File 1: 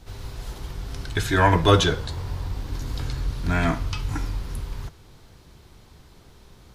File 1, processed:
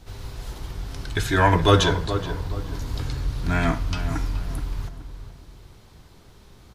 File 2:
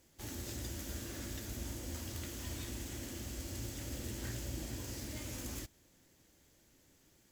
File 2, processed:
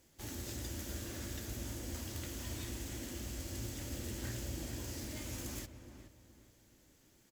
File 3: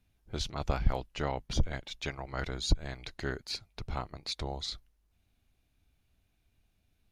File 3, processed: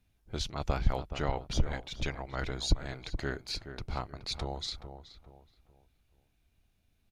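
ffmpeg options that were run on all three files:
ffmpeg -i in.wav -filter_complex "[0:a]asplit=2[link_01][link_02];[link_02]adelay=424,lowpass=frequency=1700:poles=1,volume=-9.5dB,asplit=2[link_03][link_04];[link_04]adelay=424,lowpass=frequency=1700:poles=1,volume=0.35,asplit=2[link_05][link_06];[link_06]adelay=424,lowpass=frequency=1700:poles=1,volume=0.35,asplit=2[link_07][link_08];[link_08]adelay=424,lowpass=frequency=1700:poles=1,volume=0.35[link_09];[link_01][link_03][link_05][link_07][link_09]amix=inputs=5:normalize=0" out.wav

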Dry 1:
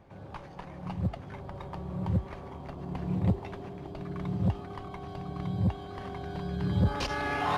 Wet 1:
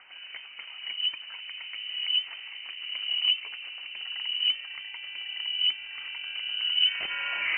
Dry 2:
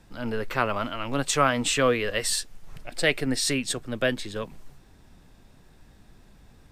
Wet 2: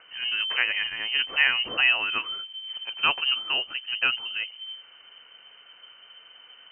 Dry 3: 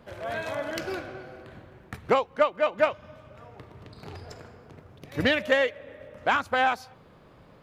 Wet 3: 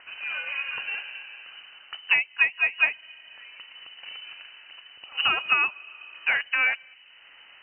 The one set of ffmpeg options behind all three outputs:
ffmpeg -i in.wav -filter_complex "[0:a]aemphasis=mode=reproduction:type=75fm,acrossover=split=1200[link_01][link_02];[link_02]acompressor=mode=upward:threshold=-46dB:ratio=2.5[link_03];[link_01][link_03]amix=inputs=2:normalize=0,lowpass=frequency=2600:width_type=q:width=0.5098,lowpass=frequency=2600:width_type=q:width=0.6013,lowpass=frequency=2600:width_type=q:width=0.9,lowpass=frequency=2600:width_type=q:width=2.563,afreqshift=-3100" out.wav

